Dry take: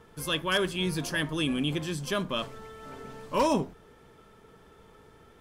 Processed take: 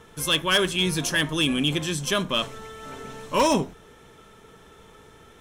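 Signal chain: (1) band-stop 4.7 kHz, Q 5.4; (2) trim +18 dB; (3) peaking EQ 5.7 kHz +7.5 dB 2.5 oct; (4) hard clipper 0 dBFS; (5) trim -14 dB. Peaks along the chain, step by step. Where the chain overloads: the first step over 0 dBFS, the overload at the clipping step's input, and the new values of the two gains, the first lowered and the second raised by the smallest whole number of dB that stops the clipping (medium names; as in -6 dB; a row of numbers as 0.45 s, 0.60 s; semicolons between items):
-15.5 dBFS, +2.5 dBFS, +6.5 dBFS, 0.0 dBFS, -14.0 dBFS; step 2, 6.5 dB; step 2 +11 dB, step 5 -7 dB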